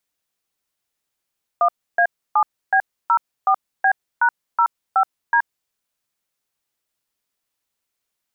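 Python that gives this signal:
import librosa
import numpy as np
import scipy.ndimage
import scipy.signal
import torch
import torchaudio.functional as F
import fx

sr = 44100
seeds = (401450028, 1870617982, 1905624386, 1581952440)

y = fx.dtmf(sr, digits='1A7B04B#05D', tone_ms=75, gap_ms=297, level_db=-15.0)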